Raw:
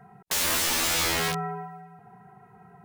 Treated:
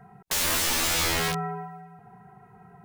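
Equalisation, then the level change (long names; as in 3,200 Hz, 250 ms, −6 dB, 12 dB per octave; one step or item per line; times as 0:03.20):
low-shelf EQ 72 Hz +8.5 dB
0.0 dB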